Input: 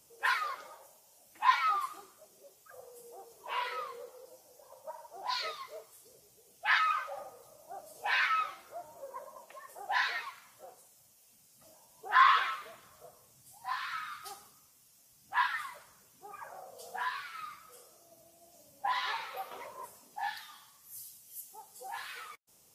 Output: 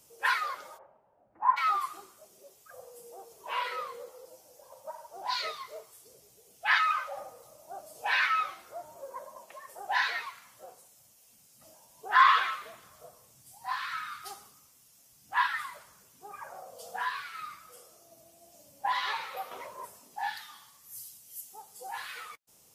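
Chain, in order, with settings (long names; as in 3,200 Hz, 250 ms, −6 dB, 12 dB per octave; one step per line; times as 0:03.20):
0:00.77–0:01.56: low-pass filter 1,900 Hz → 1,100 Hz 24 dB per octave
level +2.5 dB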